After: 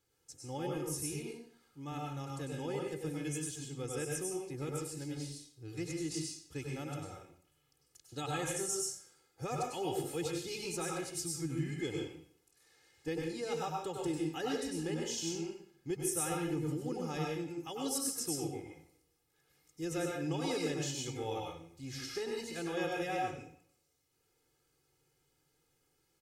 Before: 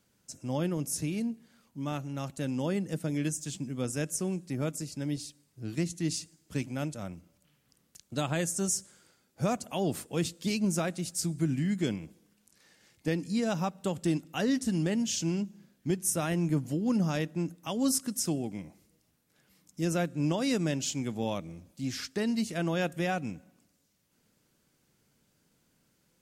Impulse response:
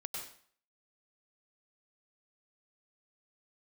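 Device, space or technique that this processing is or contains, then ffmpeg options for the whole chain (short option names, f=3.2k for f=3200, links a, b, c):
microphone above a desk: -filter_complex "[0:a]aecho=1:1:2.4:0.9[a];[1:a]atrim=start_sample=2205[b];[a][b]afir=irnorm=-1:irlink=0,volume=-6dB"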